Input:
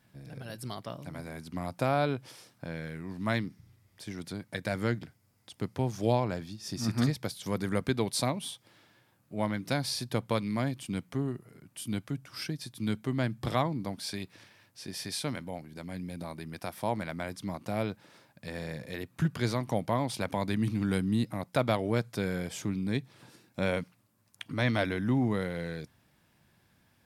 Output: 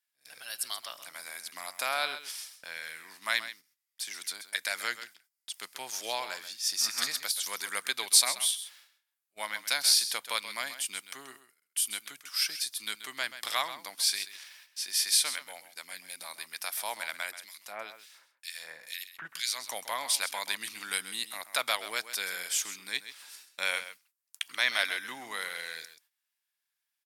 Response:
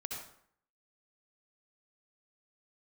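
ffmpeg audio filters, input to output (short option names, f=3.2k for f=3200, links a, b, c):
-filter_complex "[0:a]highpass=1.5k,highshelf=f=4.8k:g=10,agate=range=-24dB:threshold=-59dB:ratio=16:detection=peak,asettb=1/sr,asplit=3[a][b][c];[a]atrim=end=17.314[d];[b]atrim=start=17.31:end=19.64,asetpts=PTS-STARTPTS,afade=t=in:d=0.004:c=qsin,afade=t=out:st=2.326:d=0.004:c=qsin,acrossover=split=2000[e][f];[e]aeval=exprs='val(0)*(1-1/2+1/2*cos(2*PI*2.1*n/s))':c=same[g];[f]aeval=exprs='val(0)*(1-1/2-1/2*cos(2*PI*2.1*n/s))':c=same[h];[g][h]amix=inputs=2:normalize=0[i];[c]atrim=start=19.636[j];[d][i]acrossfade=d=0.004:c1=hsin:c2=qsin[k];[k][j]acrossfade=d=0.004:c1=qsin:c2=hsin,aecho=1:1:132:0.237,volume=6dB"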